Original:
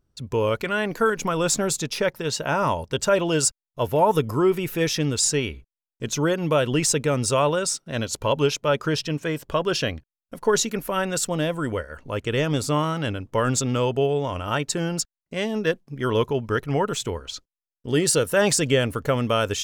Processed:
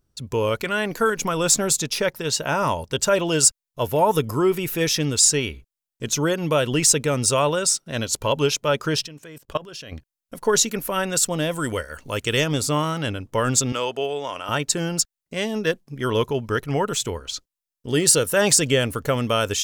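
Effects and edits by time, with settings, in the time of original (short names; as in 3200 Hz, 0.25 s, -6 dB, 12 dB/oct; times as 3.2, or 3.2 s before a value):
9.06–9.92 level quantiser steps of 20 dB
11.51–12.44 high shelf 2600 Hz +9 dB
13.72–14.49 weighting filter A
whole clip: high shelf 4000 Hz +7.5 dB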